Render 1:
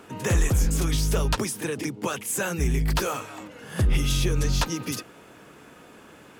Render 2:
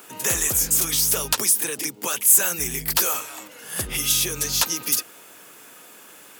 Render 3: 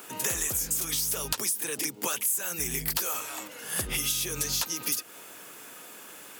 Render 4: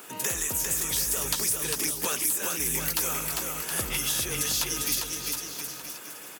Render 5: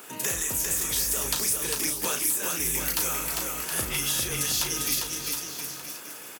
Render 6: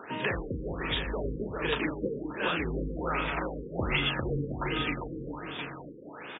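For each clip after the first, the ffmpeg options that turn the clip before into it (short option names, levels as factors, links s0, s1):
-af "aemphasis=mode=production:type=riaa"
-af "acompressor=threshold=0.0501:ratio=6"
-af "aecho=1:1:400|720|976|1181|1345:0.631|0.398|0.251|0.158|0.1"
-filter_complex "[0:a]asplit=2[s0][s1];[s1]adelay=35,volume=0.447[s2];[s0][s2]amix=inputs=2:normalize=0"
-af "afftfilt=real='re*lt(b*sr/1024,510*pow(3800/510,0.5+0.5*sin(2*PI*1.3*pts/sr)))':imag='im*lt(b*sr/1024,510*pow(3800/510,0.5+0.5*sin(2*PI*1.3*pts/sr)))':win_size=1024:overlap=0.75,volume=1.78"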